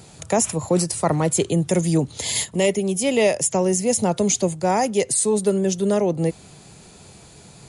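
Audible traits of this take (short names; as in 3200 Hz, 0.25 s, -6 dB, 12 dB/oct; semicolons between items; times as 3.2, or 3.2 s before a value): noise floor -47 dBFS; spectral tilt -4.5 dB/oct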